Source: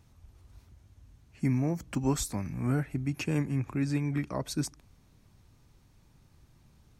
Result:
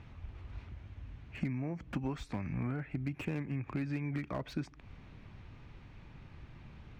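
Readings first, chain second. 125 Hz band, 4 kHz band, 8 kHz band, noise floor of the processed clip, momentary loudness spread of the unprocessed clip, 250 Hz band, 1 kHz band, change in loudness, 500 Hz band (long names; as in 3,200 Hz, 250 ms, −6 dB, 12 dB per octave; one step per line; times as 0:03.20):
−6.5 dB, −10.0 dB, below −20 dB, −56 dBFS, 5 LU, −7.0 dB, −5.5 dB, −8.0 dB, −7.0 dB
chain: downward compressor 20 to 1, threshold −41 dBFS, peak gain reduction 19.5 dB
low-pass with resonance 2,500 Hz, resonance Q 1.7
slew-rate limiting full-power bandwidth 7.1 Hz
level +8.5 dB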